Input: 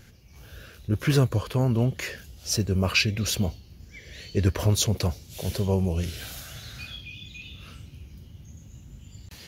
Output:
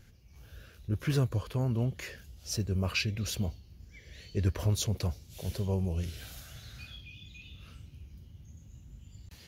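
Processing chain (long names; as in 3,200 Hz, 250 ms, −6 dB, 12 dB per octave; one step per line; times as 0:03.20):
low-shelf EQ 95 Hz +7.5 dB
level −9 dB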